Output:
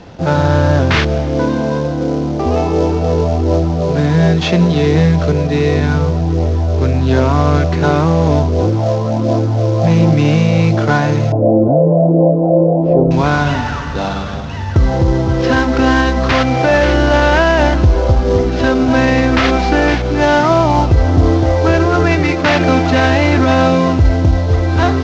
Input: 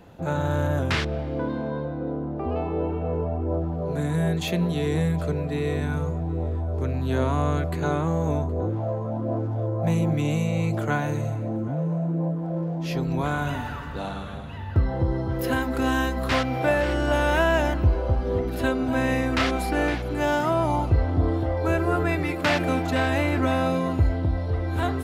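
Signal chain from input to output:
variable-slope delta modulation 32 kbit/s
0:11.32–0:13.11: drawn EQ curve 170 Hz 0 dB, 610 Hz +13 dB, 1,600 Hz −20 dB, 3,500 Hz −30 dB
boost into a limiter +14 dB
level −1 dB

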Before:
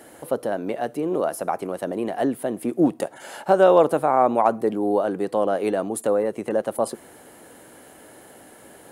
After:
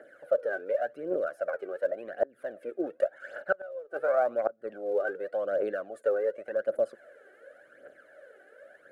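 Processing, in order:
pair of resonant band-passes 930 Hz, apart 1.4 octaves
phase shifter 0.89 Hz, delay 2.7 ms, feedback 66%
gate with flip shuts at −13 dBFS, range −26 dB

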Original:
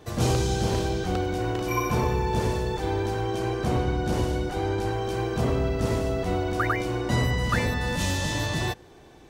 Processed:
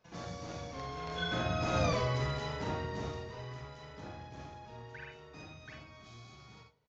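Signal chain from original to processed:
source passing by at 0:02.53, 23 m/s, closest 2.1 metres
in parallel at −5 dB: dead-zone distortion −55 dBFS
on the sum: parametric band 2,200 Hz +5.5 dB 3 octaves
downward compressor 4 to 1, threshold −35 dBFS, peak gain reduction 13 dB
on a send at −2 dB: convolution reverb RT60 0.35 s, pre-delay 50 ms
on the sum: downsampling to 11,025 Hz
wrong playback speed 33 rpm record played at 45 rpm
level +3.5 dB

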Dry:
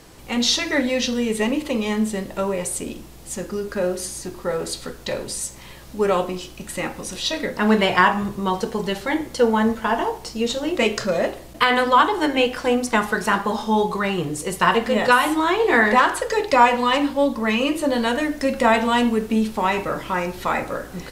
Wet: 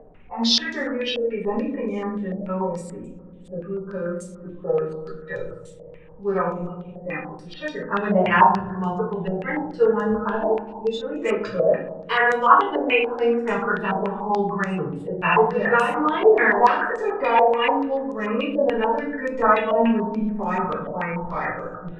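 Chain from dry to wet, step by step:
adaptive Wiener filter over 9 samples
noise reduction from a noise print of the clip's start 14 dB
wrong playback speed 25 fps video run at 24 fps
healed spectral selection 0:00.39–0:00.64, 490–1,300 Hz
on a send: feedback echo with a low-pass in the loop 81 ms, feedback 84%, low-pass 1,200 Hz, level −12 dB
on the sum: rectangular room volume 43 cubic metres, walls mixed, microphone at 1.9 metres
upward compression, threshold −23 dBFS
parametric band 350 Hz −4 dB 0.21 octaves
low-pass on a step sequencer 6.9 Hz 660–6,700 Hz
level −15.5 dB

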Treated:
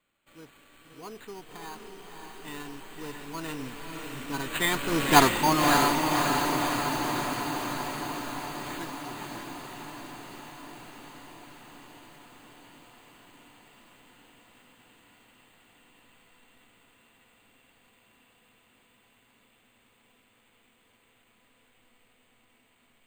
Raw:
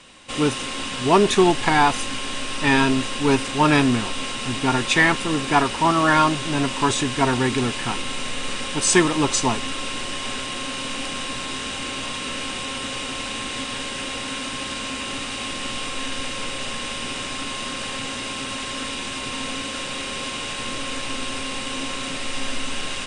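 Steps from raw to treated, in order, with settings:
source passing by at 0:05.18, 25 m/s, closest 4.6 metres
bad sample-rate conversion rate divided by 8×, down none, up hold
feedback delay with all-pass diffusion 580 ms, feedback 71%, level −4 dB

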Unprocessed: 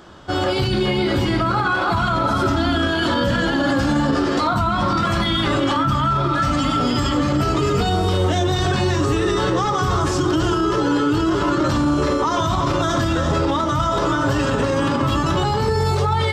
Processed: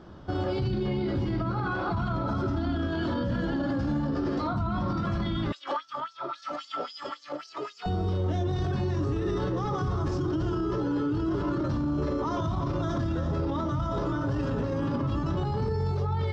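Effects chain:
drawn EQ curve 170 Hz 0 dB, 3,000 Hz −14 dB, 5,500 Hz −12 dB, 9,000 Hz −29 dB
brickwall limiter −21.5 dBFS, peak gain reduction 9.5 dB
0:05.52–0:07.86: auto-filter high-pass sine 3.7 Hz 510–5,900 Hz

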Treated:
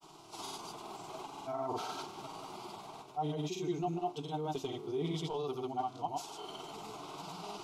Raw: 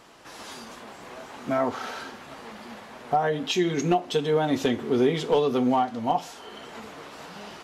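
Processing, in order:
reversed playback
downward compressor 16 to 1, threshold −30 dBFS, peak gain reduction 14.5 dB
reversed playback
granular cloud, pitch spread up and down by 0 semitones
phaser with its sweep stopped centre 350 Hz, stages 8
level +1 dB

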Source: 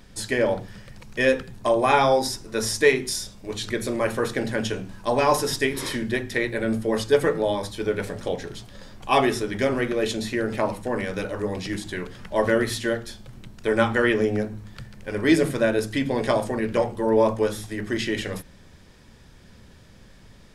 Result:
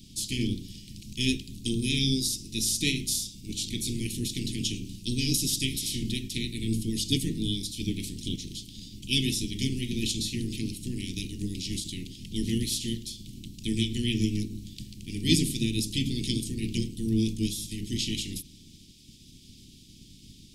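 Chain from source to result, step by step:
ceiling on every frequency bin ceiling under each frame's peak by 15 dB
inverse Chebyshev band-stop filter 570–1,600 Hz, stop band 50 dB

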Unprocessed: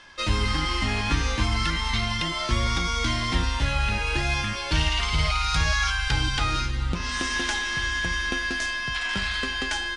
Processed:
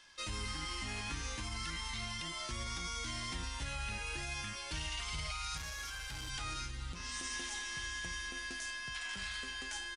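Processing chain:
first-order pre-emphasis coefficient 0.8
0:07.07–0:08.60: notch filter 1,500 Hz, Q 7.8
dynamic equaliser 4,100 Hz, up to −5 dB, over −48 dBFS, Q 1.1
brickwall limiter −27.5 dBFS, peak gain reduction 6.5 dB
0:05.57–0:06.30: hard clipping −38 dBFS, distortion −18 dB
downsampling to 32,000 Hz
level −2.5 dB

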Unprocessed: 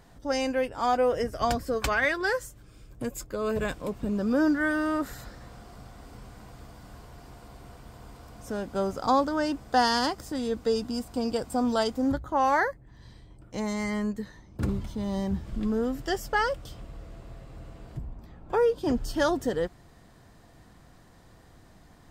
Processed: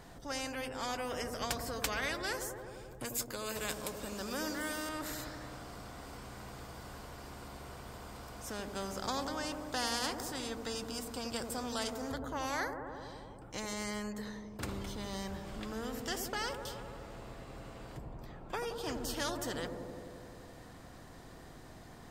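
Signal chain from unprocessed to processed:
0:03.05–0:04.89: bass and treble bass −7 dB, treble +8 dB
on a send: delay with a low-pass on its return 86 ms, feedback 69%, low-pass 530 Hz, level −5 dB
on the sum: every bin compressed towards the loudest bin 2 to 1
level −7.5 dB

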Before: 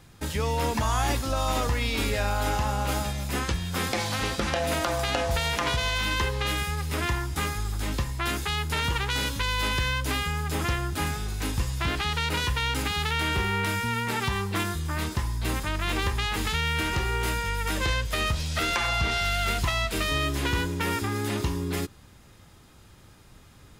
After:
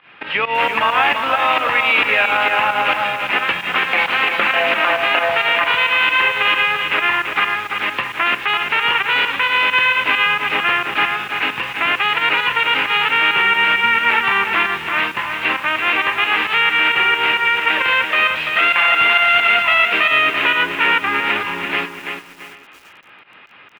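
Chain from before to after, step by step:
variable-slope delta modulation 64 kbit/s
elliptic low-pass filter 2,700 Hz, stop band 60 dB
fake sidechain pumping 133 BPM, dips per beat 2, −17 dB, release 115 ms
high-pass filter 150 Hz 12 dB per octave
first difference
single-tap delay 782 ms −22.5 dB
boost into a limiter +34.5 dB
feedback echo at a low word length 337 ms, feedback 35%, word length 6 bits, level −6 dB
level −4 dB

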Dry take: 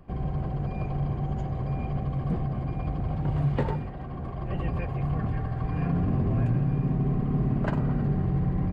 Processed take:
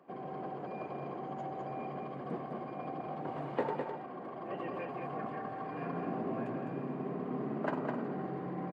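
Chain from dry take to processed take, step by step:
Bessel high-pass filter 380 Hz, order 4
high-shelf EQ 2,300 Hz −11 dB
single-tap delay 207 ms −5.5 dB

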